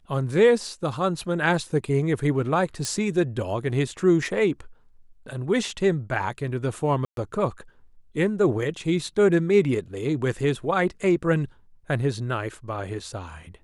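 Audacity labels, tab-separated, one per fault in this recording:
2.850000	2.850000	click −14 dBFS
7.050000	7.170000	drop-out 122 ms

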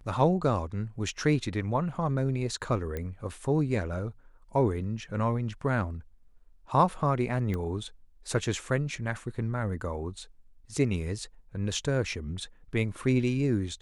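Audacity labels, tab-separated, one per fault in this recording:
2.970000	2.970000	click −21 dBFS
7.540000	7.540000	click −21 dBFS

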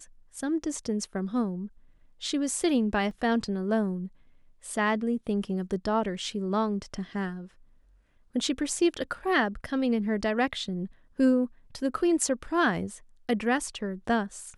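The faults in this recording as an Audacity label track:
3.110000	3.110000	drop-out 2.4 ms

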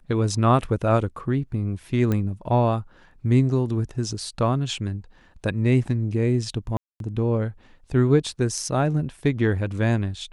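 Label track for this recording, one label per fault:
2.120000	2.120000	click −13 dBFS
6.770000	7.000000	drop-out 232 ms

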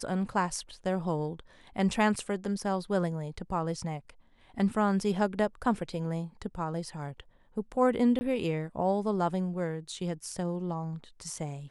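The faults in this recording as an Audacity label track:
8.190000	8.210000	drop-out 20 ms

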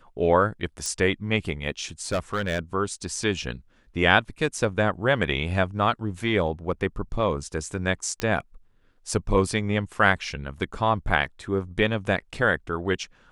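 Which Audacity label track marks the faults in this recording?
0.860000	0.860000	click −16 dBFS
2.040000	2.590000	clipping −20.5 dBFS
8.200000	8.200000	click −12 dBFS

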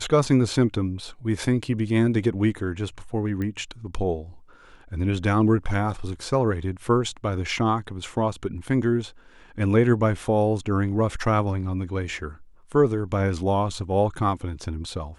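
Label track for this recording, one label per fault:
3.420000	3.420000	click −19 dBFS

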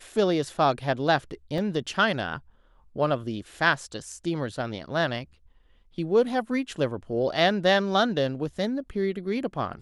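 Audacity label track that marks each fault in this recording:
1.580000	1.580000	drop-out 2.2 ms

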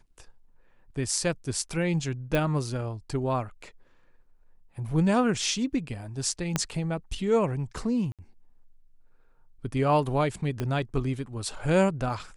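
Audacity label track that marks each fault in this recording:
2.350000	2.350000	click −13 dBFS
6.560000	6.560000	click −10 dBFS
8.120000	8.190000	drop-out 67 ms
10.600000	10.600000	click −17 dBFS

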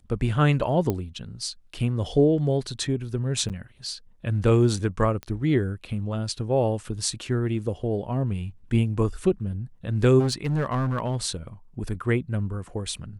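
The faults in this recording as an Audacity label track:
0.900000	0.900000	click −13 dBFS
3.490000	3.500000	drop-out 8 ms
5.230000	5.230000	click −20 dBFS
10.190000	11.170000	clipping −20 dBFS

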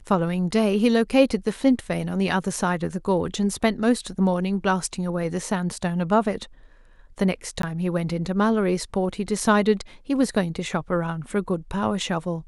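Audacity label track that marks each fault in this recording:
7.620000	7.630000	drop-out 13 ms

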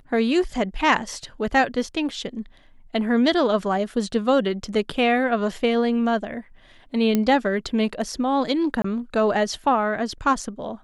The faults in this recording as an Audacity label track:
7.150000	7.150000	click −8 dBFS
8.820000	8.840000	drop-out 24 ms

